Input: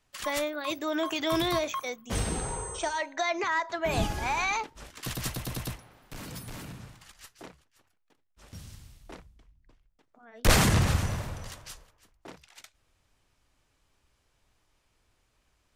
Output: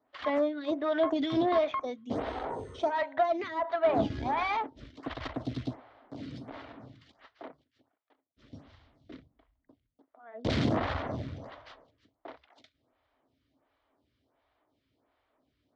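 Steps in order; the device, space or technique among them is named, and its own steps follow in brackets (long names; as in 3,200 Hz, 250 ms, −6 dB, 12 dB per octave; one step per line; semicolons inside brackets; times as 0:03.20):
0:04.18–0:05.46: low-shelf EQ 90 Hz +11.5 dB
vibe pedal into a guitar amplifier (phaser with staggered stages 1.4 Hz; tube saturation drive 27 dB, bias 0.6; loudspeaker in its box 92–3,700 Hz, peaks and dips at 180 Hz −8 dB, 270 Hz +10 dB, 650 Hz +7 dB, 1,600 Hz −3 dB, 2,600 Hz −8 dB)
level +4.5 dB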